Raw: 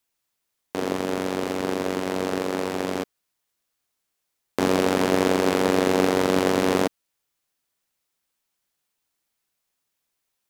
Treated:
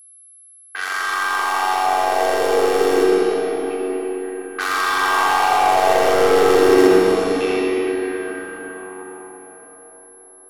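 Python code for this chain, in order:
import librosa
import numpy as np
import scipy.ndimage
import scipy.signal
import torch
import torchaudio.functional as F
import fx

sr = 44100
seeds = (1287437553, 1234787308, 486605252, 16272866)

y = scipy.signal.sosfilt(scipy.signal.butter(2, 94.0, 'highpass', fs=sr, output='sos'), x)
y = fx.tilt_eq(y, sr, slope=2.0)
y = y + 0.92 * np.pad(y, (int(2.6 * sr / 1000.0), 0))[:len(y)]
y = fx.echo_feedback(y, sr, ms=719, feedback_pct=42, wet_db=-12)
y = fx.fold_sine(y, sr, drive_db=4, ceiling_db=0.0)
y = fx.filter_lfo_highpass(y, sr, shape='saw_down', hz=0.27, low_hz=210.0, high_hz=2600.0, q=4.3)
y = 10.0 ** (-8.0 / 20.0) * np.tanh(y / 10.0 ** (-8.0 / 20.0))
y = fx.env_lowpass(y, sr, base_hz=770.0, full_db=-14.5)
y = fx.rev_freeverb(y, sr, rt60_s=4.6, hf_ratio=0.55, predelay_ms=25, drr_db=-3.5)
y = y + 10.0 ** (-37.0 / 20.0) * np.sin(2.0 * np.pi * 11000.0 * np.arange(len(y)) / sr)
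y = y * 10.0 ** (-6.5 / 20.0)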